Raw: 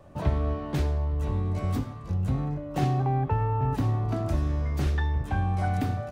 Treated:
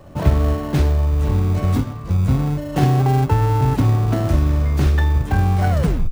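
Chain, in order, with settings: tape stop at the end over 0.41 s; in parallel at -9 dB: sample-rate reducer 1200 Hz, jitter 0%; on the sum: gain +7.5 dB

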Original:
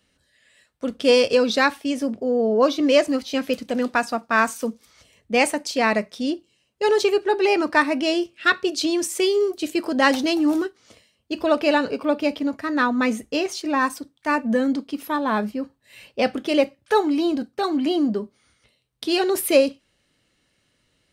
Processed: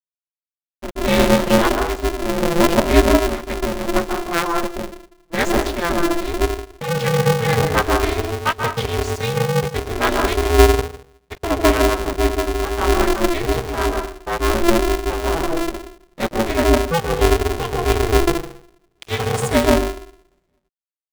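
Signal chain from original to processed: delay-line pitch shifter -4.5 st; crossover distortion -34 dBFS; on a send at -3 dB: reverb RT60 0.45 s, pre-delay 0.131 s; on the sum: polarity switched at an audio rate 170 Hz

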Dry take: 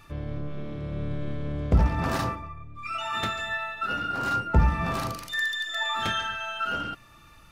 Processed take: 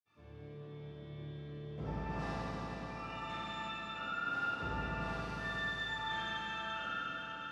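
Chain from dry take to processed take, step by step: BPF 120–5700 Hz; reverb RT60 5.8 s, pre-delay 46 ms, DRR -60 dB; gain +5.5 dB

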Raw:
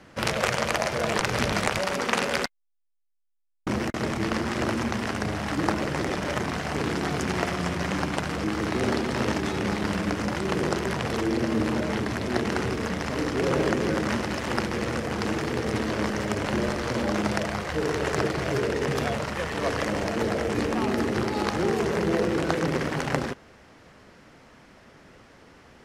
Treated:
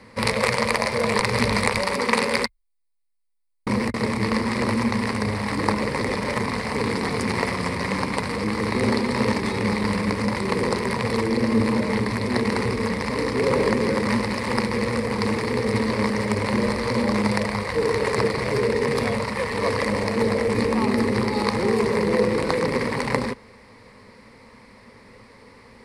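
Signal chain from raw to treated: ripple EQ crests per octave 0.93, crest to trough 11 dB; gain +2 dB

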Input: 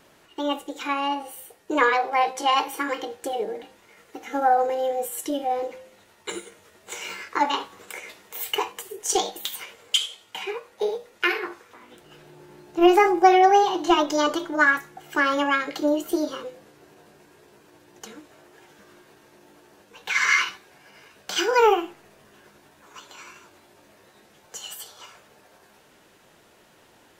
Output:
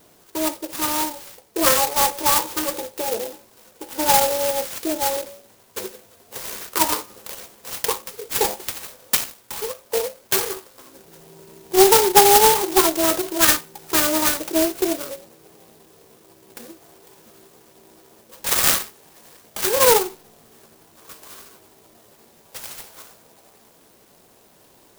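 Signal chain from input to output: speed mistake 44.1 kHz file played as 48 kHz; clock jitter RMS 0.15 ms; gain +3 dB

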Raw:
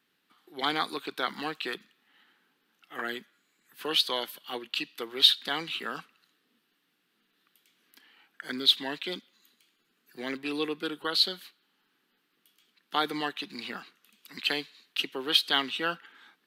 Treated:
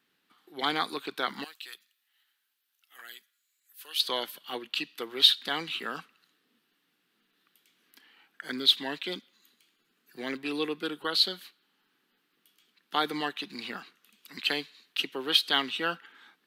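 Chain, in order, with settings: 1.44–4 differentiator

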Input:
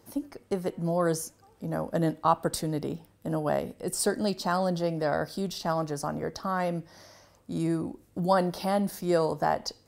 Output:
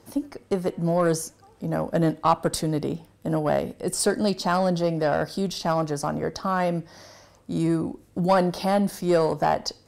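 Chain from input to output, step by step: Bessel low-pass 11000 Hz, order 2; in parallel at -11 dB: wavefolder -22 dBFS; on the sum: gain +3 dB

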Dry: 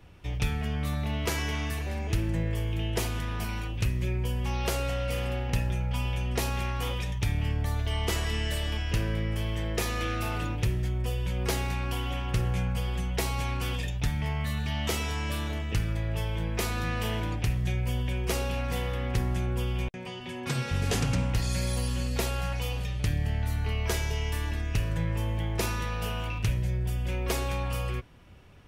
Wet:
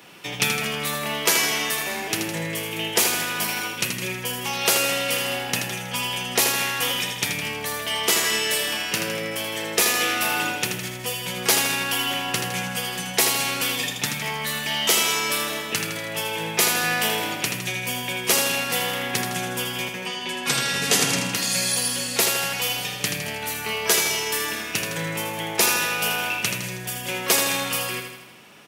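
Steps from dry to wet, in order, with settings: HPF 160 Hz 24 dB/oct; tilt +2.5 dB/oct; in parallel at -3 dB: vocal rider 2 s; on the sum: feedback echo 80 ms, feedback 57%, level -6 dB; gain +3.5 dB

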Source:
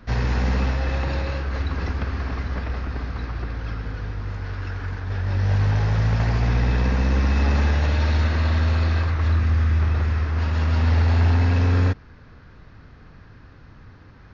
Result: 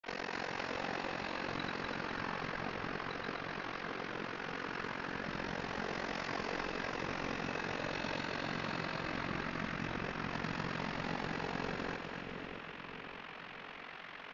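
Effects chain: de-hum 54.95 Hz, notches 2; spectral gate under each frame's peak -15 dB weak; in parallel at 0 dB: compressor, threshold -42 dBFS, peak gain reduction 16 dB; on the sum: limiter -25 dBFS, peak gain reduction 9.5 dB; resonator 54 Hz, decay 0.21 s, harmonics all, mix 80%; band noise 590–2900 Hz -49 dBFS; grains, pitch spread up and down by 0 st; AM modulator 45 Hz, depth 100%; on a send: split-band echo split 620 Hz, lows 0.625 s, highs 0.249 s, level -5 dB; on the sum: gain +2.5 dB

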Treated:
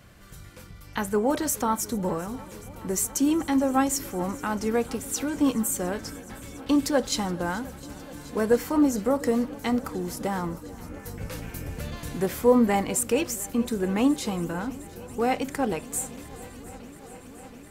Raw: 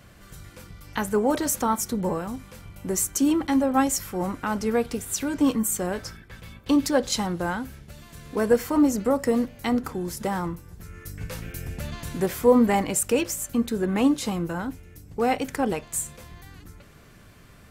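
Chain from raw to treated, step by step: swung echo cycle 0.708 s, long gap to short 1.5:1, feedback 79%, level -21.5 dB; gain -1.5 dB

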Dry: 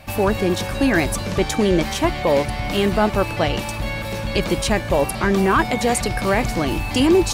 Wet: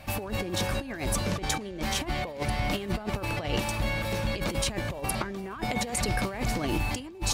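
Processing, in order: negative-ratio compressor -22 dBFS, ratio -0.5; gain -7 dB

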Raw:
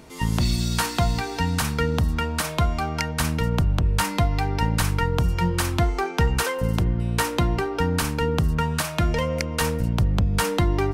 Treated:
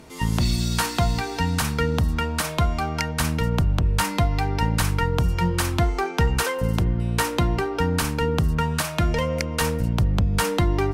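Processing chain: added harmonics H 5 -37 dB, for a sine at -6.5 dBFS

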